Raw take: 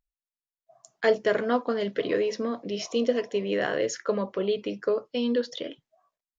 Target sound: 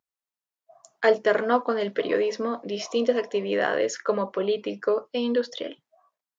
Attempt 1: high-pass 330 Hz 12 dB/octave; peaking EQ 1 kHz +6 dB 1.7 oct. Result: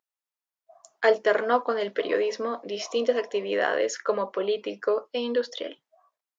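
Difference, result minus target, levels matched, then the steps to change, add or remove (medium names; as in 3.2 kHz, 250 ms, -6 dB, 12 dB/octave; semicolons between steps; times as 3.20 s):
125 Hz band -7.0 dB
change: high-pass 160 Hz 12 dB/octave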